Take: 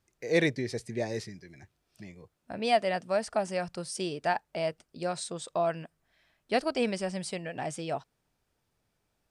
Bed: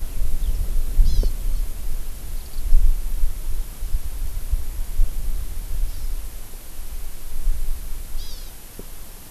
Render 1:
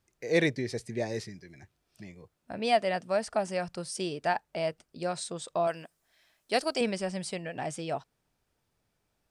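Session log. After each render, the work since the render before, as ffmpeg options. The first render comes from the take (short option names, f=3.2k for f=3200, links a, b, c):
-filter_complex "[0:a]asettb=1/sr,asplit=3[a][b][c];[a]atrim=end=5.674[d];[b]atrim=start=5.67:end=6.81,asetpts=PTS-STARTPTS,afade=t=in:d=0.004:c=qsin,afade=t=out:st=1.136:d=0.004:c=qsin,bass=f=250:g=-8,treble=f=4k:g=9[e];[c]atrim=start=6.806[f];[d][e]acrossfade=d=0.004:c1=hsin:c2=qsin[g];[g][f]acrossfade=d=0.004:c1=qsin:c2=hsin"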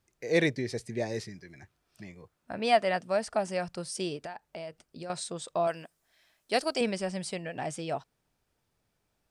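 -filter_complex "[0:a]asettb=1/sr,asplit=3[a][b][c];[a]atrim=end=1.314[d];[b]atrim=start=1.31:end=2.97,asetpts=PTS-STARTPTS,afade=t=in:d=0.004:c=qsin,afade=t=out:st=1.656:d=0.004:c=qsin,equalizer=f=1.3k:w=1.1:g=4.5[e];[c]atrim=start=2.966[f];[d][e]acrossfade=d=0.004:c1=hsin:c2=qsin[g];[g][f]acrossfade=d=0.004:c1=qsin:c2=hsin,asettb=1/sr,asplit=3[h][i][j];[h]atrim=end=4.164[k];[i]atrim=start=4.16:end=5.1,asetpts=PTS-STARTPTS,afade=t=in:d=0.004:c=qsin,afade=t=out:st=0.936:d=0.004:c=qsin,acompressor=threshold=-37dB:ratio=6:attack=3.2:release=140:knee=1:detection=peak[l];[j]atrim=start=5.096[m];[k][l]acrossfade=d=0.004:c1=hsin:c2=qsin[n];[n][m]acrossfade=d=0.004:c1=qsin:c2=hsin"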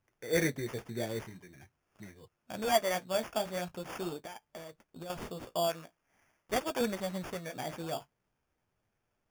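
-af "flanger=delay=8.2:depth=9.8:regen=-38:speed=0.44:shape=sinusoidal,acrusher=samples=11:mix=1:aa=0.000001"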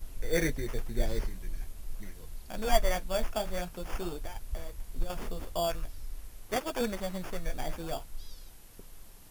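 -filter_complex "[1:a]volume=-14dB[a];[0:a][a]amix=inputs=2:normalize=0"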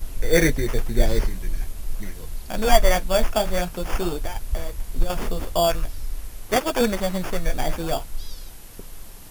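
-af "volume=11dB,alimiter=limit=-2dB:level=0:latency=1"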